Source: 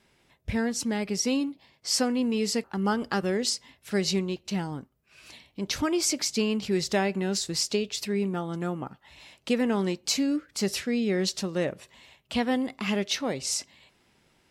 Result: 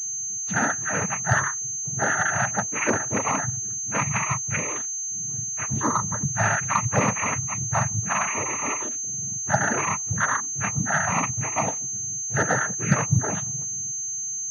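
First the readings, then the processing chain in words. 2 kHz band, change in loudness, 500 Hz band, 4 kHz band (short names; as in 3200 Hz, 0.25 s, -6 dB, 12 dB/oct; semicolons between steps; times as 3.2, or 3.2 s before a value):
+10.5 dB, +4.0 dB, -2.5 dB, -13.0 dB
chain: spectrum mirrored in octaves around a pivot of 610 Hz; noise vocoder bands 12; pulse-width modulation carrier 6300 Hz; gain +5 dB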